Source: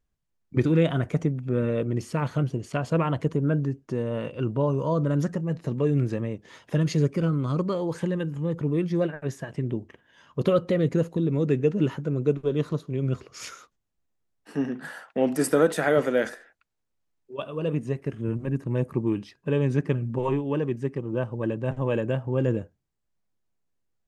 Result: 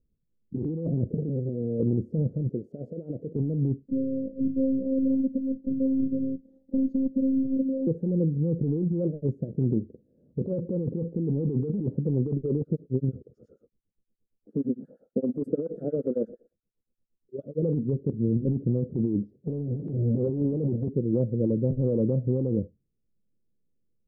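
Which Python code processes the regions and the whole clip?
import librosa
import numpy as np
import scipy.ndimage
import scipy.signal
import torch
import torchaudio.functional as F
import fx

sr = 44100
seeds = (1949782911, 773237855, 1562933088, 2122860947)

y = fx.chain(x, sr, fx.hum_notches(base_hz=50, count=4),
    fx.over_compress(threshold_db=-30.0, ratio=-1.0),
    fx.transformer_sat(knee_hz=650.0), at=(1.14, 1.8))
y = fx.chain(y, sr, fx.highpass(hz=810.0, slope=6),
    fx.over_compress(threshold_db=-36.0, ratio=-1.0), at=(2.49, 3.36))
y = fx.chain(y, sr, fx.robotise(hz=266.0),
    fx.peak_eq(hz=460.0, db=-11.0, octaves=0.4), at=(3.88, 7.87))
y = fx.chain(y, sr, fx.peak_eq(hz=1300.0, db=12.5, octaves=0.69),
    fx.harmonic_tremolo(hz=8.6, depth_pct=100, crossover_hz=1400.0), at=(12.6, 17.63))
y = fx.chain(y, sr, fx.halfwave_hold(),
    fx.highpass(hz=88.0, slope=24), at=(19.33, 20.88))
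y = scipy.signal.sosfilt(scipy.signal.ellip(4, 1.0, 50, 510.0, 'lowpass', fs=sr, output='sos'), y)
y = fx.peak_eq(y, sr, hz=210.0, db=4.5, octaves=0.52)
y = fx.over_compress(y, sr, threshold_db=-27.0, ratio=-1.0)
y = y * librosa.db_to_amplitude(2.0)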